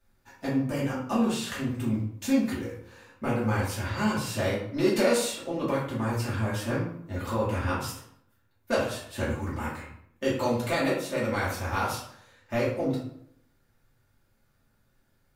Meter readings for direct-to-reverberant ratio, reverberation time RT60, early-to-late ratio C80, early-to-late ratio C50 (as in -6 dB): -9.0 dB, 0.70 s, 7.0 dB, 3.5 dB